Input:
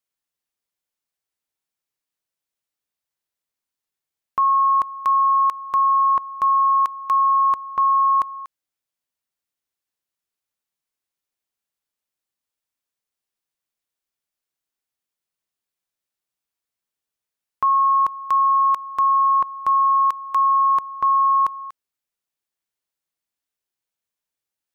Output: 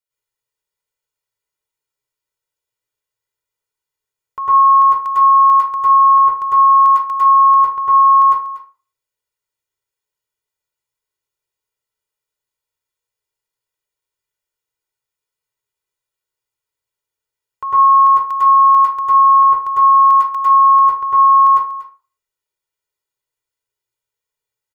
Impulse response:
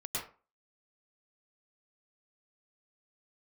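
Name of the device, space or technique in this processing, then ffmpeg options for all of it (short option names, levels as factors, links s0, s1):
microphone above a desk: -filter_complex "[0:a]aecho=1:1:2.1:0.79[s0];[1:a]atrim=start_sample=2205[s1];[s0][s1]afir=irnorm=-1:irlink=0,volume=0.891"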